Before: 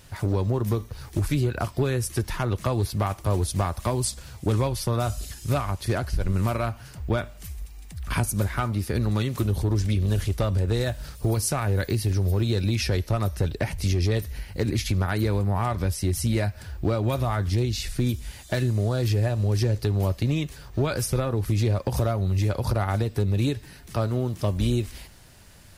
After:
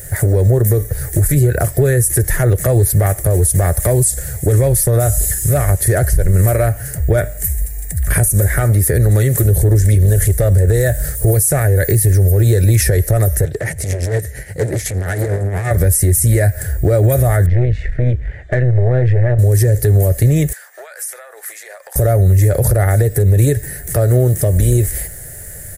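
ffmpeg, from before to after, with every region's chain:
ffmpeg -i in.wav -filter_complex "[0:a]asettb=1/sr,asplit=3[link_01][link_02][link_03];[link_01]atrim=end=13.454[link_04];[link_02]atrim=start=13.45:end=15.71,asetpts=PTS-STARTPTS,afade=type=in:duration=0.004:curve=qsin,afade=type=out:start_time=2.256:duration=0.004:curve=qsin,asoftclip=type=hard:threshold=-26.5dB,highpass=110,lowpass=7300,tremolo=f=8.5:d=0.53[link_05];[link_03]atrim=start=15.706[link_06];[link_04][link_05]acrossfade=duration=0.004:curve1=hsin:curve2=qsin[link_07];[link_07][link_06]acrossfade=duration=0.004:curve1=qsin:curve2=hsin,asettb=1/sr,asplit=3[link_08][link_09][link_10];[link_08]atrim=end=17.464[link_11];[link_09]atrim=start=17.46:end=19.39,asetpts=PTS-STARTPTS,afade=type=in:duration=0.004:curve=qsin,afade=type=out:start_time=1.926:duration=0.004:curve=qsin,lowpass=frequency=2700:width=0.5412,lowpass=frequency=2700:width=1.3066,aeval=exprs='(tanh(11.2*val(0)+0.65)-tanh(0.65))/11.2':channel_layout=same[link_12];[link_10]atrim=start=19.386[link_13];[link_11][link_12]acrossfade=duration=0.004:curve1=hsin:curve2=qsin[link_14];[link_14][link_13]acrossfade=duration=0.004:curve1=qsin:curve2=hsin,asettb=1/sr,asplit=3[link_15][link_16][link_17];[link_15]atrim=end=20.534[link_18];[link_16]atrim=start=20.53:end=21.96,asetpts=PTS-STARTPTS,afade=type=in:duration=0.004:curve=qsin,afade=type=out:start_time=1.426:duration=0.004:curve=qsin,highpass=frequency=890:width=0.5412,highpass=frequency=890:width=1.3066,aemphasis=mode=reproduction:type=50kf,acompressor=threshold=-42dB:ratio=16:attack=3.2:release=140:knee=1:detection=peak[link_19];[link_17]atrim=start=21.956[link_20];[link_18][link_19]acrossfade=duration=0.004:curve1=hsin:curve2=qsin[link_21];[link_21][link_20]acrossfade=duration=0.004:curve1=qsin:curve2=hsin,firequalizer=gain_entry='entry(150,0);entry(220,-13);entry(440,2);entry(630,0);entry(990,-19);entry(1800,3);entry(2600,-16);entry(4800,-13);entry(7400,6);entry(11000,11)':delay=0.05:min_phase=1,alimiter=level_in=21dB:limit=-1dB:release=50:level=0:latency=1,volume=-4dB" out.wav

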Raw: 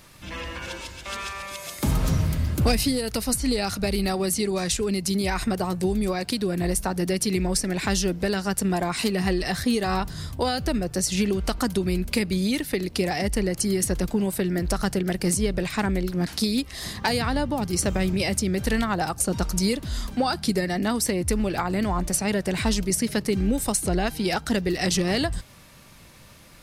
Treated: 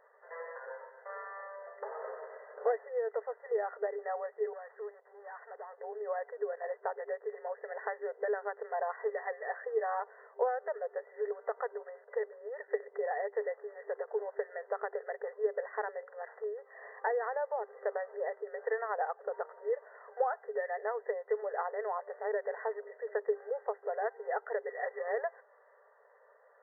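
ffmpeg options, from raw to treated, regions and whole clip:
ffmpeg -i in.wav -filter_complex "[0:a]asettb=1/sr,asplit=3[link_01][link_02][link_03];[link_01]atrim=end=4.534[link_04];[link_02]atrim=start=4.53:end=5.78,asetpts=PTS-STARTPTS,afade=type=in:duration=0.004:curve=qsin,afade=type=out:start_time=1.246:duration=0.004:curve=qsin,highpass=frequency=730:poles=1,aeval=exprs='(tanh(50.1*val(0)+0.25)-tanh(0.25))/50.1':channel_layout=same[link_05];[link_03]atrim=start=5.776[link_06];[link_04][link_05]acrossfade=duration=0.004:curve1=hsin:curve2=qsin[link_07];[link_07][link_06]acrossfade=duration=0.004:curve1=qsin:curve2=hsin,afftfilt=real='re*between(b*sr/4096,400,2000)':imag='im*between(b*sr/4096,400,2000)':win_size=4096:overlap=0.75,equalizer=frequency=1400:width=0.63:gain=-10" out.wav

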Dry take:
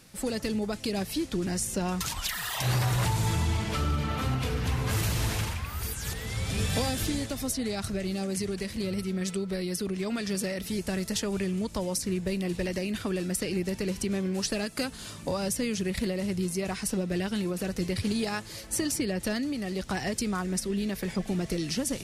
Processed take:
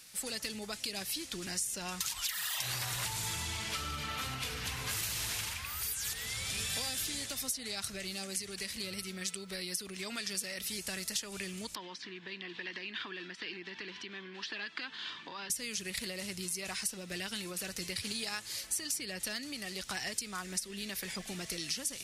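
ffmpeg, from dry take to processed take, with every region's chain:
ffmpeg -i in.wav -filter_complex "[0:a]asettb=1/sr,asplit=3[link_01][link_02][link_03];[link_01]atrim=end=11.754[link_04];[link_02]atrim=start=11.75:end=15.5,asetpts=PTS-STARTPTS,afade=type=in:duration=0.004:curve=qsin,afade=type=out:start_time=3.746:duration=0.004:curve=qsin,acompressor=threshold=-32dB:ratio=4:attack=3.2:release=140:knee=1:detection=peak,highpass=210,equalizer=frequency=330:width_type=q:width=4:gain=6,equalizer=frequency=570:width_type=q:width=4:gain=-9,equalizer=frequency=1000:width_type=q:width=4:gain=8,equalizer=frequency=1700:width_type=q:width=4:gain=8,equalizer=frequency=3300:width_type=q:width=4:gain=6,lowpass=frequency=3900:width=0.5412,lowpass=frequency=3900:width=1.3066[link_05];[link_03]atrim=start=15.496[link_06];[link_04][link_05]acrossfade=duration=0.004:curve1=hsin:curve2=qsin[link_07];[link_07][link_06]acrossfade=duration=0.004:curve1=qsin:curve2=hsin,tiltshelf=frequency=1100:gain=-9.5,acompressor=threshold=-29dB:ratio=3,volume=-5dB" out.wav

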